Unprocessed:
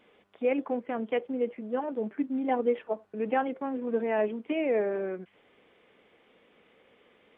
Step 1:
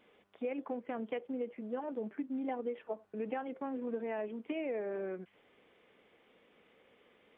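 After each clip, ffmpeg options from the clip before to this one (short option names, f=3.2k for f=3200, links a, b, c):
-af "acompressor=threshold=-30dB:ratio=6,volume=-4dB"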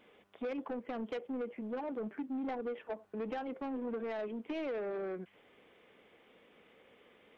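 -af "asoftclip=type=tanh:threshold=-36dB,volume=3dB"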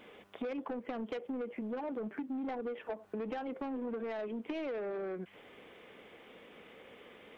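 -af "acompressor=threshold=-45dB:ratio=5,volume=8dB"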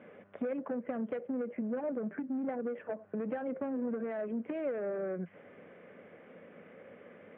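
-af "highpass=100,equalizer=f=100:t=q:w=4:g=9,equalizer=f=170:t=q:w=4:g=10,equalizer=f=240:t=q:w=4:g=5,equalizer=f=570:t=q:w=4:g=9,equalizer=f=900:t=q:w=4:g=-4,equalizer=f=1.6k:t=q:w=4:g=4,lowpass=f=2.2k:w=0.5412,lowpass=f=2.2k:w=1.3066,volume=-1.5dB"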